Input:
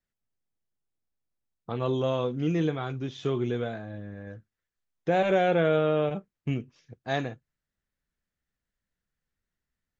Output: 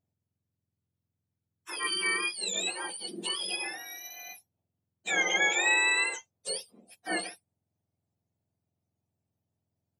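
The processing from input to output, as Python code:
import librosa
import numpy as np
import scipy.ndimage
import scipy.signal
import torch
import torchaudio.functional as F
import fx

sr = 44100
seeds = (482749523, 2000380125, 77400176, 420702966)

y = fx.octave_mirror(x, sr, pivot_hz=1100.0)
y = fx.peak_eq(y, sr, hz=670.0, db=6.0, octaves=1.3, at=(6.09, 7.09))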